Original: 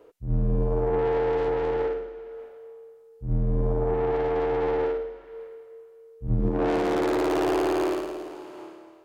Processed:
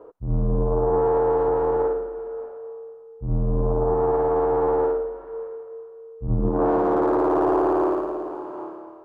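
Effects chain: FFT filter 160 Hz 0 dB, 1.1 kHz +4 dB, 2 kHz -19 dB; in parallel at -1 dB: compression, threshold -34 dBFS, peak gain reduction 14 dB; on the sum: peaking EQ 1.7 kHz +6 dB 0.97 oct

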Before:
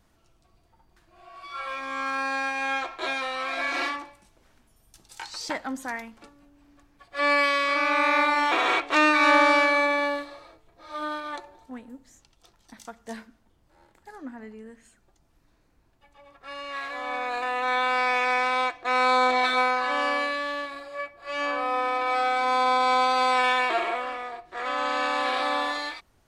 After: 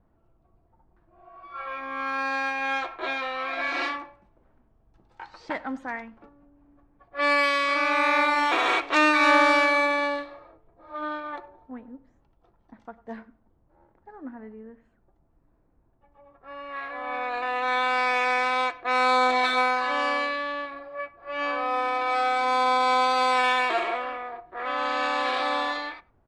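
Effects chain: speakerphone echo 100 ms, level -21 dB; level-controlled noise filter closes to 950 Hz, open at -19.5 dBFS

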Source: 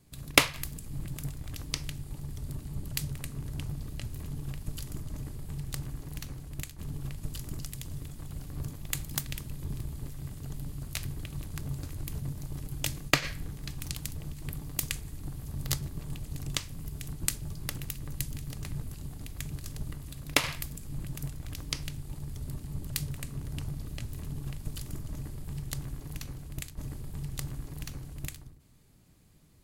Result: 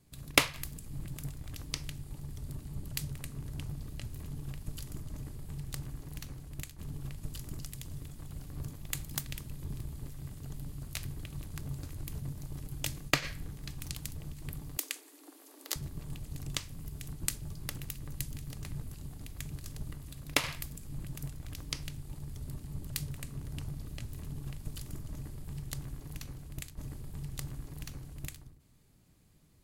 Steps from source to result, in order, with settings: 14.77–15.76 s: steep high-pass 270 Hz 96 dB/octave; trim -3.5 dB

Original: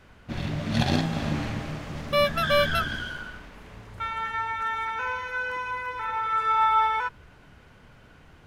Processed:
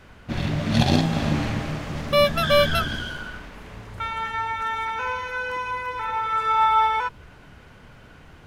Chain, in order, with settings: dynamic bell 1.6 kHz, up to -5 dB, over -38 dBFS, Q 1.6; trim +5 dB

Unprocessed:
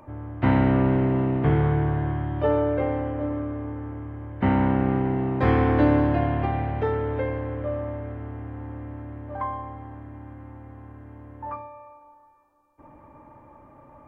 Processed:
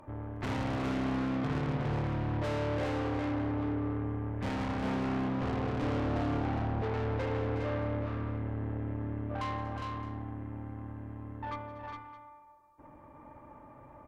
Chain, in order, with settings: 5.28–6.94 s: Chebyshev low-pass 740 Hz, order 3; valve stage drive 33 dB, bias 0.75; multi-tap echo 168/238/364/409/616 ms -18/-18.5/-9/-4.5/-17 dB

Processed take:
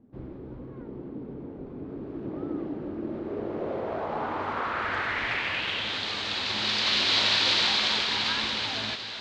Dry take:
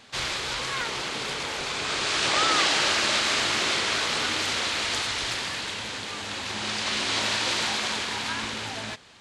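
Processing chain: low-pass sweep 290 Hz -> 4.1 kHz, 2.96–6.09 s; echo whose repeats swap between lows and highs 369 ms, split 1.4 kHz, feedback 84%, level -12.5 dB; trim -1.5 dB

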